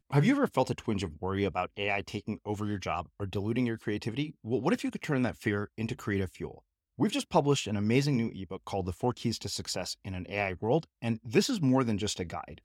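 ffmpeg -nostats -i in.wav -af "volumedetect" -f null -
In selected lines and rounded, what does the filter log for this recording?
mean_volume: -30.9 dB
max_volume: -11.1 dB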